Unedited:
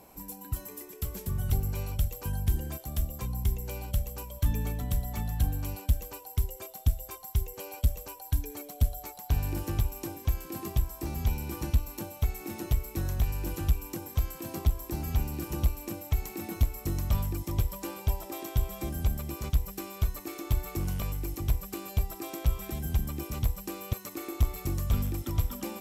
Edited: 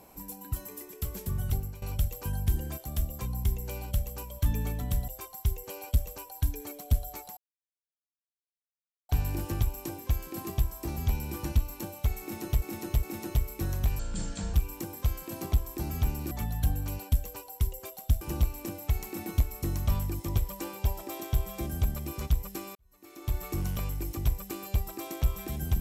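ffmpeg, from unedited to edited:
-filter_complex "[0:a]asplit=11[a][b][c][d][e][f][g][h][i][j][k];[a]atrim=end=1.82,asetpts=PTS-STARTPTS,afade=t=out:st=1.28:d=0.54:c=qsin:silence=0.133352[l];[b]atrim=start=1.82:end=5.082,asetpts=PTS-STARTPTS,afade=t=in:d=0.004:c=hsin:silence=0.133352[m];[c]atrim=start=6.978:end=9.27,asetpts=PTS-STARTPTS,afade=t=out:st=2.288:d=0.004:c=hsin,apad=pad_dur=1.72[n];[d]atrim=start=9.27:end=12.802,asetpts=PTS-STARTPTS,afade=t=in:d=0.004:c=hsin[o];[e]atrim=start=12.388:end=12.802[p];[f]atrim=start=12.388:end=13.354[q];[g]atrim=start=13.35:end=13.67,asetpts=PTS-STARTPTS,asetrate=25578,aresample=44100,atrim=end_sample=24331,asetpts=PTS-STARTPTS[r];[h]atrim=start=13.666:end=15.442[s];[i]atrim=start=5.078:end=6.982[t];[j]atrim=start=15.438:end=19.98,asetpts=PTS-STARTPTS,afade=t=out:st=4.538:d=0.004:c=hsin[u];[k]atrim=start=19.98,asetpts=PTS-STARTPTS,afade=t=in:d=0.66:c=qua[v];[l][m]concat=n=2:v=0:a=1[w];[n][o]concat=n=2:v=0:a=1[x];[w][x]acrossfade=d=0.004:c1=hsin:c2=hsin[y];[y][p]acrossfade=d=0.004:c1=hsin:c2=hsin[z];[z][q]acrossfade=d=0.004:c1=hsin:c2=hsin[aa];[aa][r]acrossfade=d=0.004:c1=hsin:c2=hsin[ab];[ab][s]acrossfade=d=0.004:c1=hsin:c2=hsin[ac];[ac][t]acrossfade=d=0.004:c1=hsin:c2=hsin[ad];[u][v]concat=n=2:v=0:a=1[ae];[ad][ae]acrossfade=d=0.004:c1=hsin:c2=hsin"

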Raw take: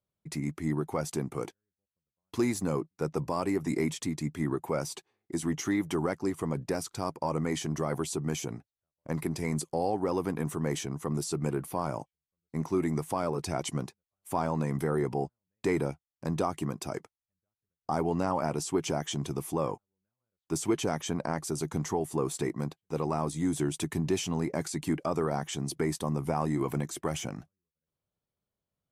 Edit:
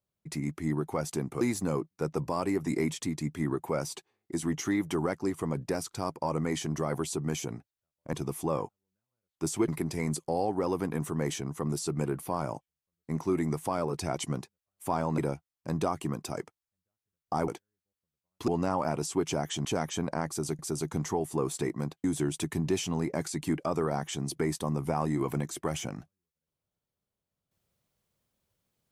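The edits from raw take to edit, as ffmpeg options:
-filter_complex "[0:a]asplit=10[a][b][c][d][e][f][g][h][i][j];[a]atrim=end=1.412[k];[b]atrim=start=2.408:end=9.132[l];[c]atrim=start=19.218:end=20.772[m];[d]atrim=start=9.128:end=14.632[n];[e]atrim=start=15.748:end=18.052[o];[f]atrim=start=1.408:end=2.412[p];[g]atrim=start=18.048:end=19.222[q];[h]atrim=start=20.768:end=21.712[r];[i]atrim=start=21.388:end=22.842[s];[j]atrim=start=23.438[t];[k][l]acrossfade=d=0.004:c1=hsin:c2=hsin[u];[u][m]acrossfade=d=0.004:c1=hsin:c2=hsin[v];[v][n]acrossfade=d=0.004:c1=hsin:c2=hsin[w];[w][o]acrossfade=d=0.004:c1=hsin:c2=hsin[x];[x][p]acrossfade=d=0.004:c1=hsin:c2=hsin[y];[y][q]acrossfade=d=0.004:c1=hsin:c2=hsin[z];[z][r]acrossfade=d=0.004:c1=hsin:c2=hsin[aa];[aa][s]acrossfade=d=0.004:c1=hsin:c2=hsin[ab];[ab][t]acrossfade=d=0.004:c1=hsin:c2=hsin"

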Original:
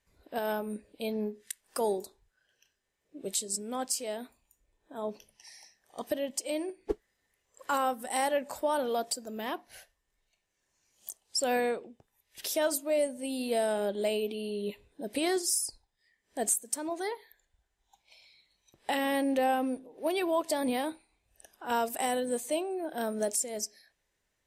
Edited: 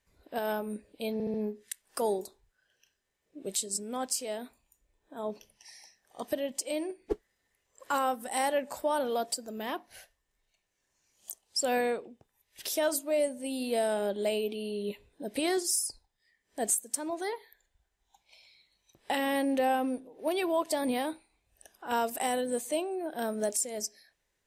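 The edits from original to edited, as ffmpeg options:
-filter_complex "[0:a]asplit=4[a][b][c][d];[a]atrim=end=1.202[e];[b]atrim=start=1.128:end=1.202[f];[c]atrim=start=1.128:end=1.202[g];[d]atrim=start=1.128[h];[e][f]acrossfade=d=0.004:c1=hsin:c2=hsin[i];[i][g]acrossfade=d=0.004:c1=hsin:c2=hsin[j];[j][h]acrossfade=d=0.004:c1=hsin:c2=hsin"

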